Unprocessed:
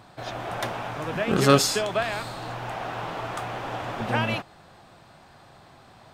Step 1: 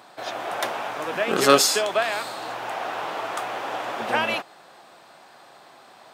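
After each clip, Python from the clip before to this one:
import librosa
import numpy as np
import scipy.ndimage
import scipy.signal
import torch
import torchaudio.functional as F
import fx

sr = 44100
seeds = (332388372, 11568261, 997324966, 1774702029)

y = scipy.signal.sosfilt(scipy.signal.butter(2, 360.0, 'highpass', fs=sr, output='sos'), x)
y = fx.high_shelf(y, sr, hz=9500.0, db=4.0)
y = F.gain(torch.from_numpy(y), 3.5).numpy()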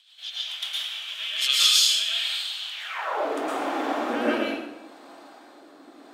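y = fx.rotary_switch(x, sr, hz=7.0, then_hz=0.75, switch_at_s=1.1)
y = fx.filter_sweep_highpass(y, sr, from_hz=3200.0, to_hz=290.0, start_s=2.71, end_s=3.26, q=7.0)
y = fx.rev_plate(y, sr, seeds[0], rt60_s=0.99, hf_ratio=0.75, predelay_ms=100, drr_db=-6.5)
y = F.gain(torch.from_numpy(y), -6.5).numpy()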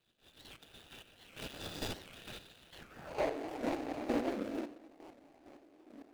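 y = scipy.signal.medfilt(x, 41)
y = fx.chopper(y, sr, hz=2.2, depth_pct=60, duty_pct=25)
y = fx.record_warp(y, sr, rpm=78.0, depth_cents=250.0)
y = F.gain(torch.from_numpy(y), -2.0).numpy()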